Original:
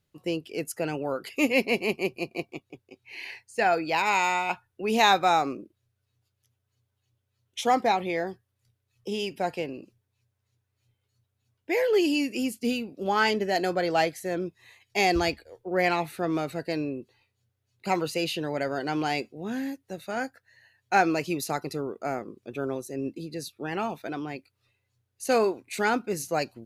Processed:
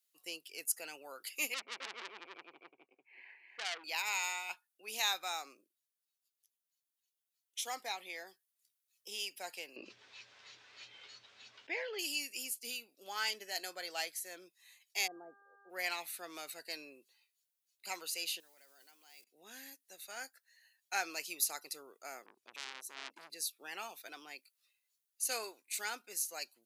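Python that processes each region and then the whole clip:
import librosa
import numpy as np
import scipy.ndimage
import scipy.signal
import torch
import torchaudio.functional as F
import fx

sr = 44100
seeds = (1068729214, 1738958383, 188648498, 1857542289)

y = fx.chain(x, sr, fx.lowpass(hz=1800.0, slope=24),
    fx.echo_single(ms=260, db=-3.5),
    fx.transformer_sat(knee_hz=2800.0), at=(1.54, 3.84))
y = fx.chain(y, sr, fx.gaussian_blur(sigma=2.3),
    fx.env_flatten(amount_pct=70), at=(9.76, 11.99))
y = fx.gaussian_blur(y, sr, sigma=11.0, at=(15.06, 15.69), fade=0.02)
y = fx.dmg_buzz(y, sr, base_hz=400.0, harmonics=4, level_db=-49.0, tilt_db=-2, odd_only=False, at=(15.06, 15.69), fade=0.02)
y = fx.chain(y, sr, fx.block_float(bits=5),
    fx.level_steps(step_db=23), at=(18.4, 19.27))
y = fx.chain(y, sr, fx.tilt_eq(slope=-2.0),
    fx.transformer_sat(knee_hz=2400.0), at=(22.26, 23.3))
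y = scipy.signal.sosfilt(scipy.signal.butter(2, 230.0, 'highpass', fs=sr, output='sos'), y)
y = np.diff(y, prepend=0.0)
y = fx.rider(y, sr, range_db=3, speed_s=2.0)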